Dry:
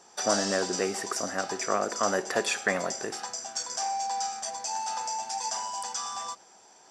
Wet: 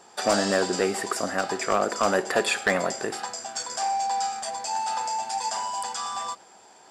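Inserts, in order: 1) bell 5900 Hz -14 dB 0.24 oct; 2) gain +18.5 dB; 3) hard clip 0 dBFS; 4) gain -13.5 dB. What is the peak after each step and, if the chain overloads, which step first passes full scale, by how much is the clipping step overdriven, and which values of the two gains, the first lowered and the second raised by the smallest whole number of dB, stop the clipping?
-11.0, +7.5, 0.0, -13.5 dBFS; step 2, 7.5 dB; step 2 +10.5 dB, step 4 -5.5 dB

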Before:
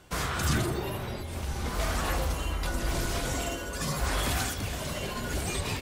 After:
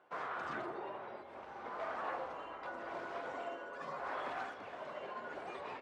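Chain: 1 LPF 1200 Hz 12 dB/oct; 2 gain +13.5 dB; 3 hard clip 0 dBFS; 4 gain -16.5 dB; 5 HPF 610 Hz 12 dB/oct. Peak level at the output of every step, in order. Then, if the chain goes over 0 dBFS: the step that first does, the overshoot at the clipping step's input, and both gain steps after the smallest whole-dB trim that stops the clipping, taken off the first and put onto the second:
-16.5, -3.0, -3.0, -19.5, -27.0 dBFS; no overload

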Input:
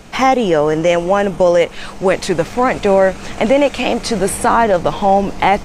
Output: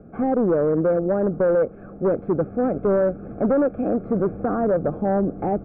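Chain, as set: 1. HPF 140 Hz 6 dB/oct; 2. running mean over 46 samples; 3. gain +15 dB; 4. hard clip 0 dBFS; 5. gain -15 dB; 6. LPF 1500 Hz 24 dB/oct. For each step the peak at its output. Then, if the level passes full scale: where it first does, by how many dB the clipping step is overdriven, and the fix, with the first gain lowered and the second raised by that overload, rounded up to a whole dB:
-1.0, -7.0, +8.0, 0.0, -15.0, -13.5 dBFS; step 3, 8.0 dB; step 3 +7 dB, step 5 -7 dB

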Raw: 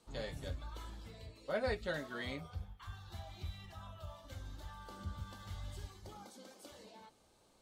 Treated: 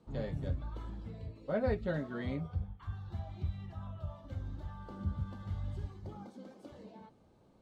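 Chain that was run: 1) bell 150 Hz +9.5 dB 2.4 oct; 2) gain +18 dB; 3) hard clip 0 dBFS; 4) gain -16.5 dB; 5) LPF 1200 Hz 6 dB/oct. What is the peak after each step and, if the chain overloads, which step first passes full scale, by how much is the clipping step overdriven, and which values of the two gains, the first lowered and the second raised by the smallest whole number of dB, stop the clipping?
-21.5, -3.5, -3.5, -20.0, -21.0 dBFS; no overload

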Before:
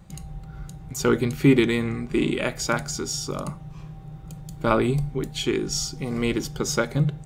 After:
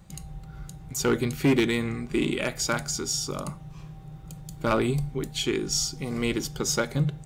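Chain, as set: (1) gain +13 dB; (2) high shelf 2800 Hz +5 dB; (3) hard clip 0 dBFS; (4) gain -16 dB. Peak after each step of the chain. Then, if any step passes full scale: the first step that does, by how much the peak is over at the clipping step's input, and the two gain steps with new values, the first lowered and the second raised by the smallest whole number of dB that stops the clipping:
+7.0, +8.0, 0.0, -16.0 dBFS; step 1, 8.0 dB; step 1 +5 dB, step 4 -8 dB

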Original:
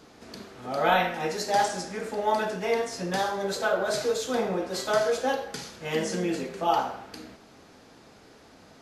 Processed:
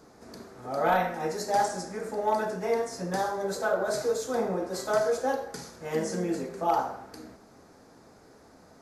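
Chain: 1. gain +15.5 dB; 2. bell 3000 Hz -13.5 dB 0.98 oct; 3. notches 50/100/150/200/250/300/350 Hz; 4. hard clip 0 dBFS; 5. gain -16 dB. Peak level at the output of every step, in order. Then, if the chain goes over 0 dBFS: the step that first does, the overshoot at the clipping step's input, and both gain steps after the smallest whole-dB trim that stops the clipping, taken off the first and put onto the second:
+5.5, +4.5, +4.5, 0.0, -16.0 dBFS; step 1, 4.5 dB; step 1 +10.5 dB, step 5 -11 dB

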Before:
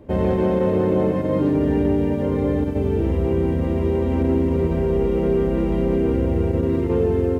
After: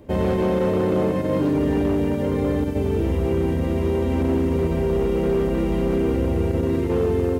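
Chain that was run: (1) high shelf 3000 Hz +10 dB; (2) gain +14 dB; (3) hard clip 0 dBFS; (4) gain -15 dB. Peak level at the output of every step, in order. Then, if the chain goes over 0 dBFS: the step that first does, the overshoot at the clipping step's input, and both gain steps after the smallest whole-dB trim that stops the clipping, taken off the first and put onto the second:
-8.0, +6.0, 0.0, -15.0 dBFS; step 2, 6.0 dB; step 2 +8 dB, step 4 -9 dB

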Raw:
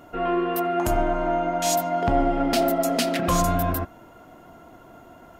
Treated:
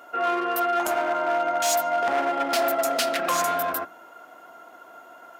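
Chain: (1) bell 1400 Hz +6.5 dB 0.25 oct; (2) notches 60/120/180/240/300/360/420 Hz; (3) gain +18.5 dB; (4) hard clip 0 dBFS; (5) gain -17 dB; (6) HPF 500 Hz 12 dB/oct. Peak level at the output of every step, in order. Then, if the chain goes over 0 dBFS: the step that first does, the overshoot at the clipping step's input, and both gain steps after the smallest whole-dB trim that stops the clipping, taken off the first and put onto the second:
-9.5, -9.5, +9.0, 0.0, -17.0, -11.5 dBFS; step 3, 9.0 dB; step 3 +9.5 dB, step 5 -8 dB

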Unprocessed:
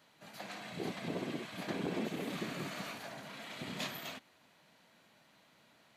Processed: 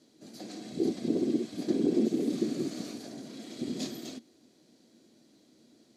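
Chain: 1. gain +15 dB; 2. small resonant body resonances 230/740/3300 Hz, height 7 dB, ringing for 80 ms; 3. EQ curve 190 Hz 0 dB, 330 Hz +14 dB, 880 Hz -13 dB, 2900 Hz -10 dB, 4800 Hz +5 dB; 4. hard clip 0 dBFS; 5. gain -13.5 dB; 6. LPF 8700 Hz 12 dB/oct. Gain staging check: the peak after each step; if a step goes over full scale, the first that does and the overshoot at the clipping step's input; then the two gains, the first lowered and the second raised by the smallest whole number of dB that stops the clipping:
-9.0, -7.5, -2.0, -2.0, -15.5, -15.5 dBFS; no overload

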